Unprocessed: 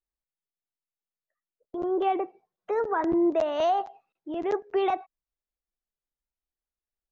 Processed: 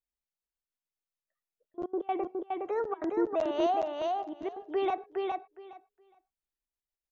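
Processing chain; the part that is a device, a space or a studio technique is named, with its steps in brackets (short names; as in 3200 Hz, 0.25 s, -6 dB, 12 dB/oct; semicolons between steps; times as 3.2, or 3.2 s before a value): trance gate with a delay (step gate "xxxxxx.x.x.xxxxx" 194 bpm -24 dB; feedback echo 0.414 s, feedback 16%, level -3 dB); gain -4.5 dB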